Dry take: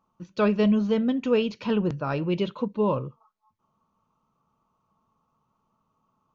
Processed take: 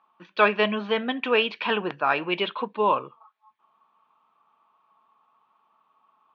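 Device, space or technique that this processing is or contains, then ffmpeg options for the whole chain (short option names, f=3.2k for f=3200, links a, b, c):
phone earpiece: -af "highpass=470,equalizer=f=530:t=q:w=4:g=-6,equalizer=f=760:t=q:w=4:g=6,equalizer=f=1.1k:t=q:w=4:g=4,equalizer=f=1.7k:t=q:w=4:g=9,equalizer=f=2.4k:t=q:w=4:g=7,equalizer=f=3.4k:t=q:w=4:g=6,lowpass=f=3.9k:w=0.5412,lowpass=f=3.9k:w=1.3066,volume=5dB"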